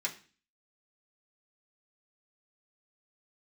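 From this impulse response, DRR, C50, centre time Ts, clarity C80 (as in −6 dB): −4.0 dB, 14.0 dB, 11 ms, 18.0 dB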